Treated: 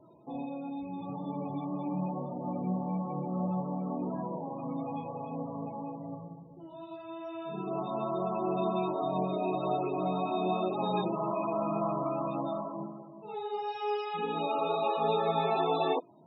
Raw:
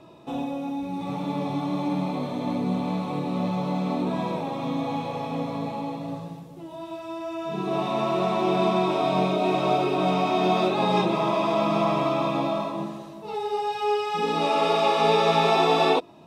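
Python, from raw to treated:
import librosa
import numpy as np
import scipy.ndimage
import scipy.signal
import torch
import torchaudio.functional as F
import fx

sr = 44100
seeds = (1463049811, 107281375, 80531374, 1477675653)

y = fx.spec_topn(x, sr, count=32)
y = fx.comb(y, sr, ms=5.6, depth=0.54, at=(1.93, 3.6), fade=0.02)
y = y * librosa.db_to_amplitude(-8.0)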